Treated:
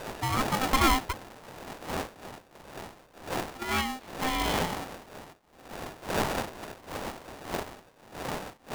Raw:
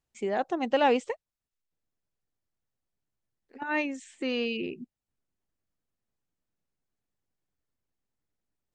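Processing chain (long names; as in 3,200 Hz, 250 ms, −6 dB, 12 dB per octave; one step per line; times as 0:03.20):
wind on the microphone 430 Hz −37 dBFS
linear-phase brick-wall low-pass 4,100 Hz
ring modulator with a square carrier 520 Hz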